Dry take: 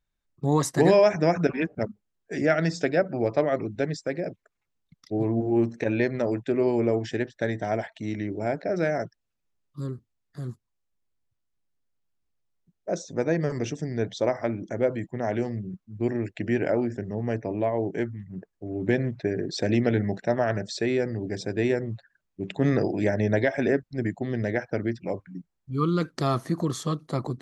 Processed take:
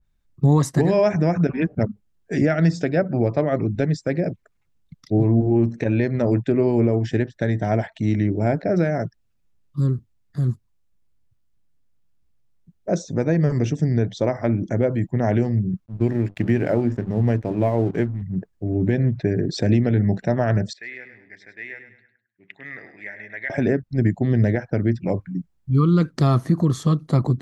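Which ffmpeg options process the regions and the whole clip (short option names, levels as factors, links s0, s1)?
-filter_complex "[0:a]asettb=1/sr,asplit=3[s0][s1][s2];[s0]atrim=end=15.864[s3];[s1]atrim=start=15.86:end=18.22,asetpts=PTS-STARTPTS,afade=t=in:d=0.004:c=qsin,afade=t=out:st=2.356:d=0.004:c=qsin,bandreject=f=50:t=h:w=6,bandreject=f=100:t=h:w=6,bandreject=f=150:t=h:w=6,bandreject=f=200:t=h:w=6,bandreject=f=250:t=h:w=6,bandreject=f=300:t=h:w=6,aeval=exprs='sgn(val(0))*max(abs(val(0))-0.00422,0)':c=same[s4];[s2]atrim=start=18.216[s5];[s3][s4]acrossfade=d=0.004:c1=hsin:c2=qsin[s6];[s6][s5]acrossfade=d=0.004:c1=qsin:c2=hsin,asettb=1/sr,asplit=3[s7][s8][s9];[s7]atrim=end=20.734[s10];[s8]atrim=start=20.73:end=23.5,asetpts=PTS-STARTPTS,afade=t=in:d=0.004:c=qsin,afade=t=out:st=2.766:d=0.004:c=qsin,bandpass=f=2000:t=q:w=5.7,aecho=1:1:102|204|306|408:0.316|0.114|0.041|0.0148,atrim=end_sample=122157[s11];[s9]atrim=start=23.496[s12];[s10][s11]acrossfade=d=0.004:c1=hsin:c2=qsin[s13];[s13][s12]acrossfade=d=0.004:c1=qsin:c2=hsin,bass=f=250:g=10,treble=f=4000:g=-1,alimiter=limit=0.224:level=0:latency=1:release=340,adynamicequalizer=threshold=0.00891:dfrequency=2000:dqfactor=0.7:tfrequency=2000:tqfactor=0.7:attack=5:release=100:ratio=0.375:range=1.5:mode=cutabove:tftype=highshelf,volume=1.68"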